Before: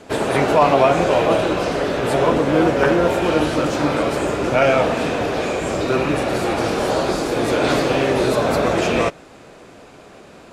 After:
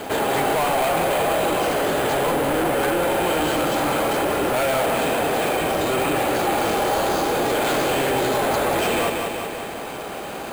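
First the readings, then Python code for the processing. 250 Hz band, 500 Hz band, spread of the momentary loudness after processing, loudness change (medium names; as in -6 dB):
-5.0 dB, -3.5 dB, 5 LU, -3.0 dB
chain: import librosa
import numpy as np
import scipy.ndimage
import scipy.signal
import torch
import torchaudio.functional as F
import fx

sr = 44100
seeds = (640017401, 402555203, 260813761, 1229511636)

p1 = fx.low_shelf(x, sr, hz=320.0, db=-7.0)
p2 = np.clip(p1, -10.0 ** (-20.5 / 20.0), 10.0 ** (-20.5 / 20.0))
p3 = fx.small_body(p2, sr, hz=(810.0, 3100.0), ring_ms=45, db=8)
p4 = p3 + fx.echo_feedback(p3, sr, ms=187, feedback_pct=49, wet_db=-8.5, dry=0)
p5 = np.repeat(scipy.signal.resample_poly(p4, 1, 4), 4)[:len(p4)]
y = fx.env_flatten(p5, sr, amount_pct=50)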